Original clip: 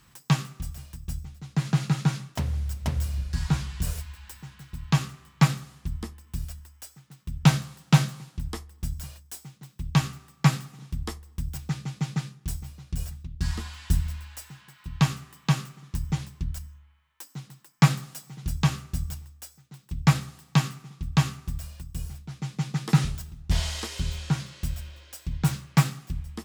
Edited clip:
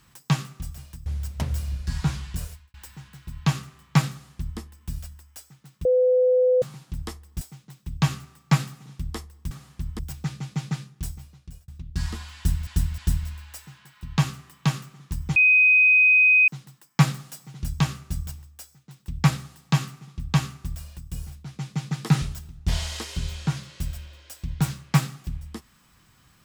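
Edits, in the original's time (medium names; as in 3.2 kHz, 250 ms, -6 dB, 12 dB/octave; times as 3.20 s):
1.06–2.52 s: delete
3.71–4.20 s: fade out
5.57–6.05 s: copy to 11.44 s
7.31–8.08 s: bleep 505 Hz -15.5 dBFS
8.87–9.34 s: delete
12.47–13.13 s: fade out
13.81–14.12 s: loop, 3 plays
16.19–17.31 s: bleep 2.51 kHz -13 dBFS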